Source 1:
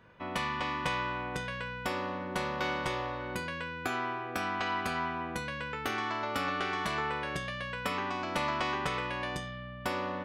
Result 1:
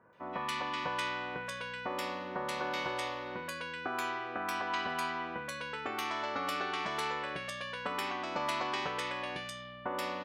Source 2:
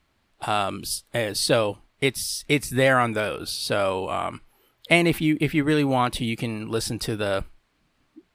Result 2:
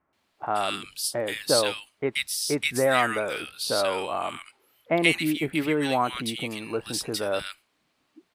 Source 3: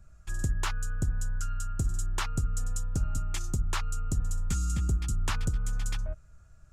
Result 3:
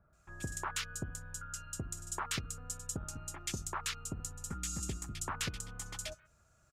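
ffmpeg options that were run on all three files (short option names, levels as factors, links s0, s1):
-filter_complex "[0:a]highpass=f=380:p=1,acrossover=split=1600[s0][s1];[s1]adelay=130[s2];[s0][s2]amix=inputs=2:normalize=0"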